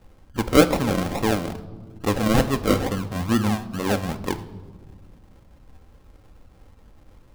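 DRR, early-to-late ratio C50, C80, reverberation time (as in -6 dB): 8.0 dB, 14.5 dB, 17.0 dB, 1.4 s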